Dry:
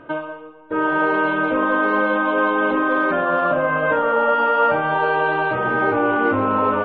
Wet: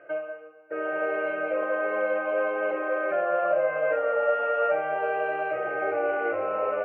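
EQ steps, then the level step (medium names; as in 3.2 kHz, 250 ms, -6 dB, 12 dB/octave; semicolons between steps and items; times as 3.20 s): dynamic bell 1.6 kHz, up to -6 dB, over -36 dBFS, Q 3.3; cabinet simulation 400–3100 Hz, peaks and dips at 430 Hz -6 dB, 1.2 kHz -8 dB, 1.7 kHz -5 dB; static phaser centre 950 Hz, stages 6; 0.0 dB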